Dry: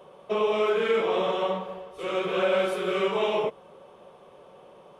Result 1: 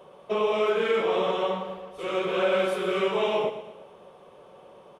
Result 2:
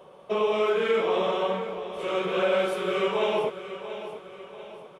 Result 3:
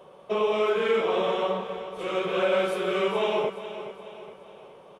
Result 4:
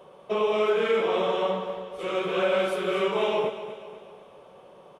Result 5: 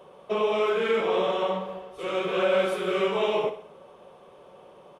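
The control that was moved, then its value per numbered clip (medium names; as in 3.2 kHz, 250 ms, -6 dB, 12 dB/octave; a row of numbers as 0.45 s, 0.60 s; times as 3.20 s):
feedback delay, time: 115 ms, 688 ms, 420 ms, 244 ms, 63 ms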